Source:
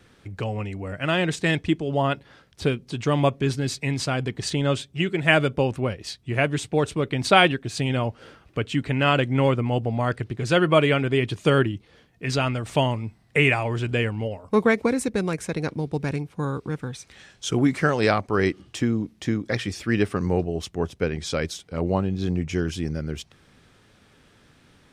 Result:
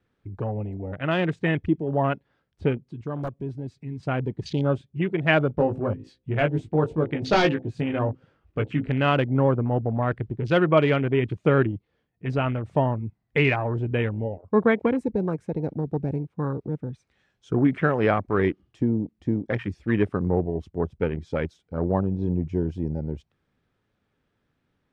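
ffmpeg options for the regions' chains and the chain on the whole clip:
-filter_complex "[0:a]asettb=1/sr,asplit=3[a][b][c];[a]atrim=end=2.784[d];[b]atrim=start=2.78:end=4.03,asetpts=PTS-STARTPTS,afade=t=in:d=0.004:c=qsin,afade=t=out:st=1.246:d=0.004:c=qsin,aeval=exprs='(mod(3.76*val(0)+1,2)-1)/3.76':c=same,acompressor=threshold=-42dB:ratio=1.5:attack=3.2:release=140:knee=1:detection=peak[e];[c]atrim=start=4.026[f];[d][e]acrossfade=d=0.004:c1=hsin:c2=qsin[g];[g][f]acrossfade=d=0.004:c1=qsin:c2=hsin,asettb=1/sr,asplit=3[h][i][j];[h]atrim=end=5.584[k];[i]atrim=start=5.58:end=8.9,asetpts=PTS-STARTPTS,afade=t=in:d=0.004:c=qsin,afade=t=out:st=3.316:d=0.004:c=qsin,bandreject=f=64.56:t=h:w=4,bandreject=f=129.12:t=h:w=4,bandreject=f=193.68:t=h:w=4,bandreject=f=258.24:t=h:w=4,bandreject=f=322.8:t=h:w=4,bandreject=f=387.36:t=h:w=4,bandreject=f=451.92:t=h:w=4,bandreject=f=516.48:t=h:w=4,aeval=exprs='0.251*(abs(mod(val(0)/0.251+3,4)-2)-1)':c=same,asplit=2[l][m];[m]adelay=19,volume=-5dB[n];[l][n]amix=inputs=2:normalize=0,atrim=end_sample=146412[o];[j]atrim=start=8.896[p];[k][o]acrossfade=d=0.004:c1=hsin:c2=qsin[q];[q][p]acrossfade=d=0.004:c1=qsin:c2=hsin,afwtdn=0.0282,lowpass=f=1.9k:p=1"

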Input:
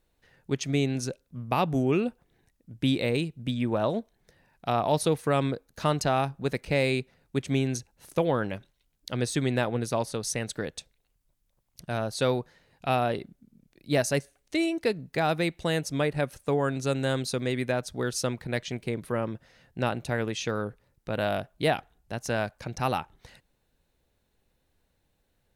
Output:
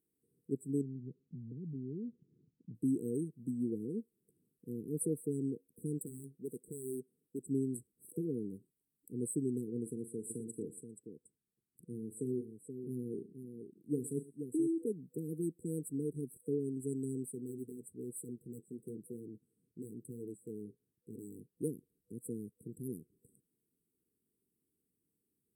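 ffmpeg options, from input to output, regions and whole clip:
-filter_complex "[0:a]asettb=1/sr,asplit=3[a][b][c];[a]atrim=end=0.814[d];[b]atrim=start=0.81:end=2.75,asetpts=PTS-STARTPTS,afade=t=in:d=0.004:c=qsin,afade=t=out:st=1.936:d=0.004:c=qsin,lowpass=f=1.4k:w=0.5412,lowpass=f=1.4k:w=1.3066,equalizer=f=140:w=0.88:g=15,acompressor=threshold=-32dB:ratio=5:attack=3.2:release=140:knee=1:detection=peak[e];[c]atrim=start=2.746[f];[d][e]acrossfade=d=0.004:c1=hsin:c2=qsin[g];[g][f]acrossfade=d=0.004:c1=qsin:c2=hsin,asettb=1/sr,asplit=3[h][i][j];[h]atrim=end=5.984[k];[i]atrim=start=5.98:end=7.46,asetpts=PTS-STARTPTS,afade=t=in:d=0.004:c=qsin,afade=t=out:st=1.476:d=0.004:c=qsin,equalizer=f=72:w=0.4:g=-9.5,aeval=exprs='0.0596*(abs(mod(val(0)/0.0596+3,4)-2)-1)':c=same[l];[j]atrim=start=7.456[m];[k][l]acrossfade=d=0.004:c1=hsin:c2=qsin[n];[n][m]acrossfade=d=0.004:c1=qsin:c2=hsin,asettb=1/sr,asplit=3[o][p][q];[o]atrim=end=9.824[r];[p]atrim=start=9.82:end=14.87,asetpts=PTS-STARTPTS,afade=t=in:d=0.004:c=qsin,afade=t=out:st=5.046:d=0.004:c=qsin,highshelf=f=8.5k:g=-10.5,aecho=1:1:40|115|478:0.224|0.1|0.398,atrim=end_sample=222705[s];[q]atrim=start=14.866[t];[r][s]acrossfade=d=0.004:c1=hsin:c2=qsin[u];[u][t]acrossfade=d=0.004:c1=qsin:c2=hsin,asettb=1/sr,asplit=3[v][w][x];[v]atrim=end=17.264[y];[w]atrim=start=17.26:end=21.57,asetpts=PTS-STARTPTS,afade=t=in:d=0.004:c=qsin,afade=t=out:st=4.306:d=0.004:c=qsin,aeval=exprs='0.075*(abs(mod(val(0)/0.075+3,4)-2)-1)':c=same,flanger=delay=6.5:depth=5.4:regen=-46:speed=1:shape=triangular[z];[x]atrim=start=21.566[aa];[y][z]acrossfade=d=0.004:c1=hsin:c2=qsin[ab];[ab][aa]acrossfade=d=0.004:c1=qsin:c2=hsin,highpass=220,afftfilt=real='re*(1-between(b*sr/4096,490,7700))':imag='im*(1-between(b*sr/4096,490,7700))':win_size=4096:overlap=0.75,equalizer=f=540:w=3.1:g=-13.5,volume=-3.5dB"

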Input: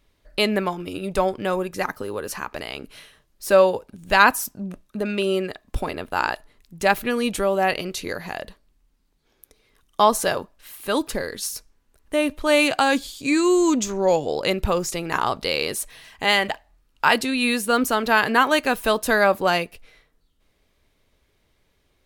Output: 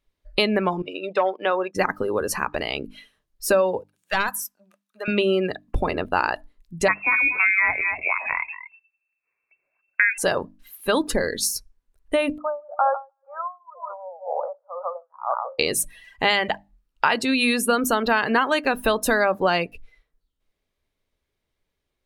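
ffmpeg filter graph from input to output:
-filter_complex "[0:a]asettb=1/sr,asplit=3[a][b][c];[a]atrim=end=0.824[d];[b]atrim=start=0.82:end=1.75,asetpts=PTS-STARTPTS,afade=t=in:d=0.004:c=qsin,afade=t=out:st=0.926:d=0.004:c=qsin,agate=range=-33dB:threshold=-31dB:ratio=3:release=100:detection=peak,asoftclip=type=hard:threshold=-14dB,highpass=490,lowpass=4.8k[e];[c]atrim=start=1.746[f];[d][e]acrossfade=d=0.004:c1=hsin:c2=qsin[g];[g][f]acrossfade=d=0.004:c1=qsin:c2=hsin,asettb=1/sr,asplit=3[h][i][j];[h]atrim=end=3.844[k];[i]atrim=start=3.84:end=5.08,asetpts=PTS-STARTPTS,afade=t=in:d=0.004:c=qsin,afade=t=out:st=1.236:d=0.004:c=qsin,highpass=1k,acrossover=split=2000|6400[l][m][n];[l]acompressor=threshold=-22dB:ratio=4[o];[m]acompressor=threshold=-37dB:ratio=4[p];[n]acompressor=threshold=-33dB:ratio=4[q];[o][p][q]amix=inputs=3:normalize=0,aeval=exprs='clip(val(0),-1,0.0376)':c=same[r];[j]atrim=start=5.076[s];[k][r]acrossfade=d=0.004:c1=hsin:c2=qsin[t];[t][s]acrossfade=d=0.004:c1=qsin:c2=hsin,asettb=1/sr,asplit=3[u][v][w];[u]atrim=end=6.884[x];[v]atrim=start=6.88:end=10.18,asetpts=PTS-STARTPTS,afade=t=in:d=0.004:c=qsin,afade=t=out:st=3.296:d=0.004:c=qsin,aecho=1:1:235:0.251,atrim=end_sample=145530,lowpass=f=2.3k:t=q:w=0.5098,lowpass=f=2.3k:t=q:w=0.6013,lowpass=f=2.3k:t=q:w=0.9,lowpass=f=2.3k:t=q:w=2.563,afreqshift=-2700[y];[w]atrim=start=10.176[z];[x][y]acrossfade=d=0.004:c1=hsin:c2=qsin[aa];[aa][z]acrossfade=d=0.004:c1=qsin:c2=hsin,asettb=1/sr,asplit=3[ab][ac][ad];[ab]atrim=end=12.384[ae];[ac]atrim=start=12.38:end=15.59,asetpts=PTS-STARTPTS,afade=t=in:d=0.004:c=qsin,afade=t=out:st=3.206:d=0.004:c=qsin,asuperpass=centerf=870:order=12:qfactor=1,aecho=1:1:152|304|456:0.316|0.0949|0.0285,atrim=end_sample=141561,aeval=exprs='val(0)*pow(10,-25*(0.5-0.5*cos(2*PI*2*n/s))/20)':c=same[af];[ad]atrim=start=15.586[ag];[ae][af]acrossfade=d=0.004:c1=hsin:c2=qsin[ah];[ah][ag]acrossfade=d=0.004:c1=qsin:c2=hsin,acompressor=threshold=-22dB:ratio=6,afftdn=nr=19:nf=-39,bandreject=f=50:t=h:w=6,bandreject=f=100:t=h:w=6,bandreject=f=150:t=h:w=6,bandreject=f=200:t=h:w=6,bandreject=f=250:t=h:w=6,bandreject=f=300:t=h:w=6,volume=6dB"

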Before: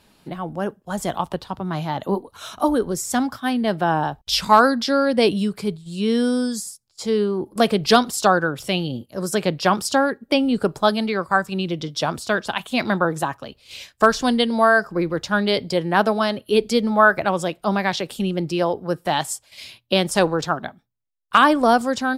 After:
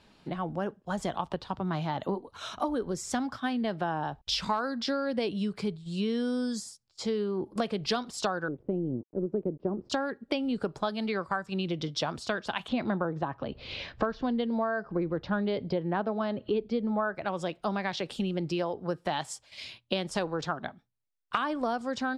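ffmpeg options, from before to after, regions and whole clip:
-filter_complex "[0:a]asettb=1/sr,asplit=3[a][b][c];[a]atrim=end=8.484[d];[b]atrim=start=8.48:end=9.9,asetpts=PTS-STARTPTS,afade=t=in:d=0.004:c=qsin,afade=t=out:st=1.416:d=0.004:c=qsin,aeval=exprs='sgn(val(0))*max(abs(val(0))-0.0112,0)':c=same,lowpass=f=370:t=q:w=2.2[e];[c]atrim=start=9.896[f];[d][e]acrossfade=d=0.004:c1=hsin:c2=qsin[g];[g][f]acrossfade=d=0.004:c1=qsin:c2=hsin,asettb=1/sr,asplit=3[h][i][j];[h]atrim=end=12.684[k];[i]atrim=start=12.68:end=17.15,asetpts=PTS-STARTPTS,afade=t=in:d=0.004:c=qsin,afade=t=out:st=4.466:d=0.004:c=qsin,tiltshelf=f=1.4k:g=6,acompressor=mode=upward:threshold=-25dB:ratio=2.5:attack=3.2:release=140:knee=2.83:detection=peak,lowpass=f=4.7k:w=0.5412,lowpass=f=4.7k:w=1.3066[l];[j]atrim=start=17.146[m];[k][l]acrossfade=d=0.004:c1=hsin:c2=qsin[n];[n][m]acrossfade=d=0.004:c1=qsin:c2=hsin,lowpass=5.6k,acompressor=threshold=-24dB:ratio=6,volume=-3dB"

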